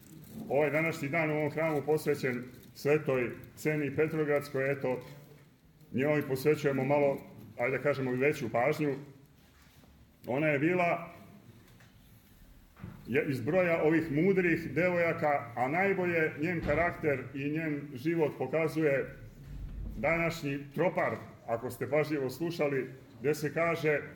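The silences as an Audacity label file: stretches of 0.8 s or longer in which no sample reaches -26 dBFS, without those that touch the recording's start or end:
4.950000	5.960000	silence
8.930000	10.290000	silence
10.940000	13.120000	silence
19.000000	20.040000	silence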